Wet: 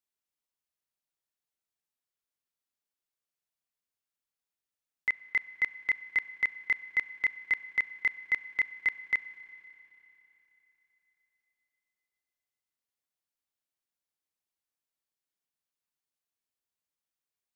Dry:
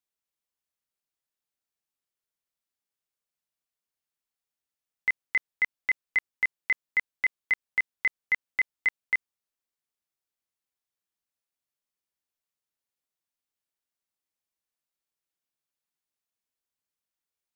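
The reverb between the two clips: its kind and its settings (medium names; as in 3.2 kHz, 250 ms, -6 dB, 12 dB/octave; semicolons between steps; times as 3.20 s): Schroeder reverb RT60 3.6 s, combs from 30 ms, DRR 17.5 dB; trim -3 dB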